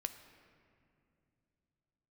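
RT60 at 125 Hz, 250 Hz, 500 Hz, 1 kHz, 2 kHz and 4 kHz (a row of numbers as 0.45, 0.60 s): 4.0, 3.4, 2.9, 2.3, 2.1, 1.5 s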